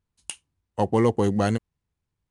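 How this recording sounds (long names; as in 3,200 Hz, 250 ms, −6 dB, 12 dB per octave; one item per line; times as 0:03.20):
IMA ADPCM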